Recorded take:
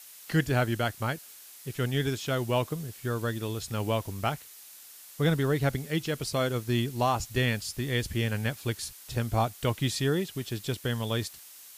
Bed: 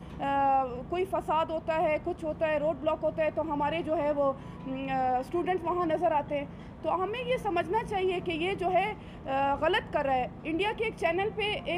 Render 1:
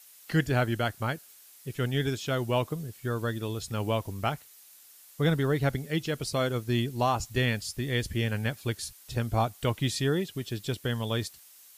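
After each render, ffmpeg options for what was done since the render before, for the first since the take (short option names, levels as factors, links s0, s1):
-af "afftdn=nr=6:nf=-49"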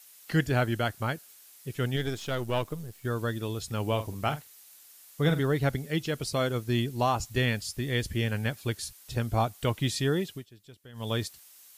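-filter_complex "[0:a]asettb=1/sr,asplit=3[s0][s1][s2];[s0]atrim=end=1.964[s3];[s1]atrim=start=1.96:end=3.05,asetpts=PTS-STARTPTS,afade=t=in:d=0.004:c=qsin,afade=t=out:st=1.086:d=0.004:c=qsin,aeval=exprs='if(lt(val(0),0),0.447*val(0),val(0))':c=same[s4];[s2]atrim=start=3.046[s5];[s3][s4]acrossfade=d=0.004:c1=hsin:c2=qsin[s6];[s6][s5]acrossfade=d=0.004:c1=qsin:c2=hsin,asettb=1/sr,asplit=3[s7][s8][s9];[s7]atrim=end=3.884[s10];[s8]atrim=start=3.88:end=5.41,asetpts=PTS-STARTPTS,afade=t=in:d=0.004:c=qsin,afade=t=out:st=1.526:d=0.004:c=qsin,asplit=2[s11][s12];[s12]adelay=47,volume=0.282[s13];[s11][s13]amix=inputs=2:normalize=0,atrim=end_sample=67473[s14];[s9]atrim=start=5.406[s15];[s10][s14]acrossfade=d=0.004:c1=hsin:c2=qsin[s16];[s16][s15]acrossfade=d=0.004:c1=qsin:c2=hsin,asplit=3[s17][s18][s19];[s17]atrim=end=10.46,asetpts=PTS-STARTPTS,afade=t=out:st=10.3:d=0.16:silence=0.105925[s20];[s18]atrim=start=10.46:end=10.93,asetpts=PTS-STARTPTS,volume=0.106[s21];[s19]atrim=start=10.93,asetpts=PTS-STARTPTS,afade=t=in:d=0.16:silence=0.105925[s22];[s20][s21][s22]concat=n=3:v=0:a=1"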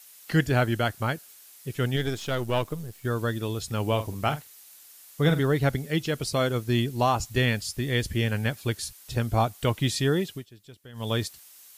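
-af "volume=1.41"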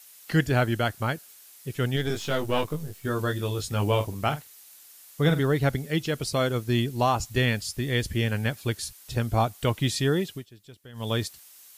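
-filter_complex "[0:a]asettb=1/sr,asplit=3[s0][s1][s2];[s0]atrim=end=2.084[s3];[s1]atrim=start=2.08:end=4.05,asetpts=PTS-STARTPTS,afade=t=in:d=0.004:c=qsin,afade=t=out:st=1.966:d=0.004:c=qsin,asplit=2[s4][s5];[s5]adelay=20,volume=0.668[s6];[s4][s6]amix=inputs=2:normalize=0,atrim=end_sample=86877[s7];[s2]atrim=start=4.046[s8];[s3][s7]acrossfade=d=0.004:c1=hsin:c2=qsin[s9];[s9][s8]acrossfade=d=0.004:c1=qsin:c2=hsin"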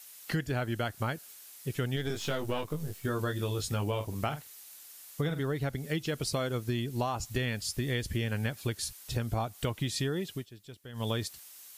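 -af "acompressor=threshold=0.0398:ratio=10"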